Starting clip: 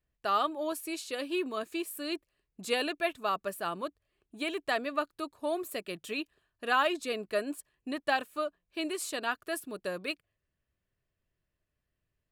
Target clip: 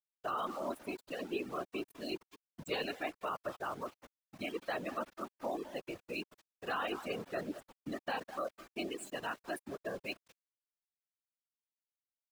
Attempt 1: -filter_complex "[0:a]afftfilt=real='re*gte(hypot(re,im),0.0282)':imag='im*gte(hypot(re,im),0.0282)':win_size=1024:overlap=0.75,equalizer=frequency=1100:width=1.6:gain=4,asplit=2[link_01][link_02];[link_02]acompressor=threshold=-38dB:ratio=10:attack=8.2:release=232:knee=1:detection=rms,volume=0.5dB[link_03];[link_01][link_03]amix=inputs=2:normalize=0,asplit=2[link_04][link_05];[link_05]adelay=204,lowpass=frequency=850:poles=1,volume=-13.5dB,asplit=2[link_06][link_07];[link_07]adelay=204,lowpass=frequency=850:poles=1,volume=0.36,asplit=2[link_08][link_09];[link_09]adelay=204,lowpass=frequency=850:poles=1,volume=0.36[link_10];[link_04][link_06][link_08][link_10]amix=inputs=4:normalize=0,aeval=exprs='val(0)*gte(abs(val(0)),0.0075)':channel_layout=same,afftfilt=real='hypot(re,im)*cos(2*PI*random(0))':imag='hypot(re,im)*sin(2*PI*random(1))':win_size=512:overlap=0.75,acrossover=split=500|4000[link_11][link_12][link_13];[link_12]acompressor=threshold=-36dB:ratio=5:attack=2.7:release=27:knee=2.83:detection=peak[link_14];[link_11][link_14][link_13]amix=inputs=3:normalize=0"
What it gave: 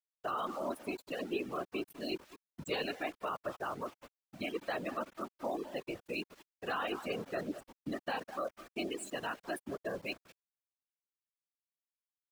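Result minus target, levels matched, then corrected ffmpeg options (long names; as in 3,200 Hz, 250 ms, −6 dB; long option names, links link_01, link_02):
downward compressor: peak gain reduction −9.5 dB
-filter_complex "[0:a]afftfilt=real='re*gte(hypot(re,im),0.0282)':imag='im*gte(hypot(re,im),0.0282)':win_size=1024:overlap=0.75,equalizer=frequency=1100:width=1.6:gain=4,asplit=2[link_01][link_02];[link_02]acompressor=threshold=-48.5dB:ratio=10:attack=8.2:release=232:knee=1:detection=rms,volume=0.5dB[link_03];[link_01][link_03]amix=inputs=2:normalize=0,asplit=2[link_04][link_05];[link_05]adelay=204,lowpass=frequency=850:poles=1,volume=-13.5dB,asplit=2[link_06][link_07];[link_07]adelay=204,lowpass=frequency=850:poles=1,volume=0.36,asplit=2[link_08][link_09];[link_09]adelay=204,lowpass=frequency=850:poles=1,volume=0.36[link_10];[link_04][link_06][link_08][link_10]amix=inputs=4:normalize=0,aeval=exprs='val(0)*gte(abs(val(0)),0.0075)':channel_layout=same,afftfilt=real='hypot(re,im)*cos(2*PI*random(0))':imag='hypot(re,im)*sin(2*PI*random(1))':win_size=512:overlap=0.75,acrossover=split=500|4000[link_11][link_12][link_13];[link_12]acompressor=threshold=-36dB:ratio=5:attack=2.7:release=27:knee=2.83:detection=peak[link_14];[link_11][link_14][link_13]amix=inputs=3:normalize=0"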